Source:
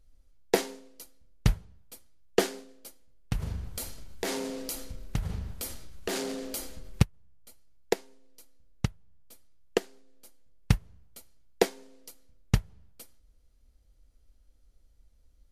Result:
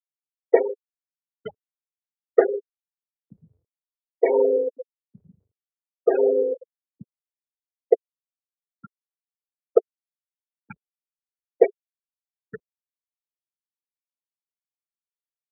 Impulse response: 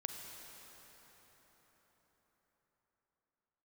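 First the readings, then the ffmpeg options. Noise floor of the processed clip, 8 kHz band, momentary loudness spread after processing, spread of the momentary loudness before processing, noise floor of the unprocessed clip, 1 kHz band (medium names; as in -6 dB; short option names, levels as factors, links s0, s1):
under -85 dBFS, under -40 dB, 18 LU, 22 LU, -62 dBFS, +4.0 dB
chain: -filter_complex "[0:a]asplit=2[s0][s1];[s1]highpass=f=720:p=1,volume=25.1,asoftclip=type=tanh:threshold=0.447[s2];[s0][s2]amix=inputs=2:normalize=0,lowpass=f=2500:p=1,volume=0.501,afftfilt=real='re*gte(hypot(re,im),0.282)':imag='im*gte(hypot(re,im),0.282)':win_size=1024:overlap=0.75,highpass=f=450:t=q:w=4,volume=0.631"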